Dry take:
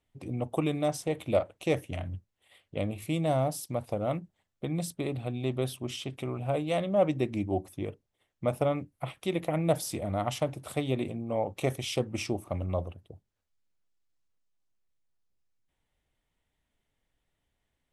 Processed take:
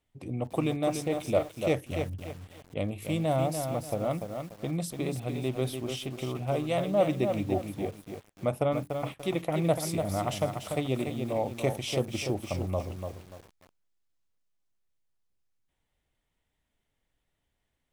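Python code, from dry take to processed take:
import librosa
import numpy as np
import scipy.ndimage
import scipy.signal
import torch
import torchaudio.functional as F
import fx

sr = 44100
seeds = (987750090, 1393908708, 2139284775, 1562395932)

y = fx.echo_crushed(x, sr, ms=292, feedback_pct=35, bits=8, wet_db=-6)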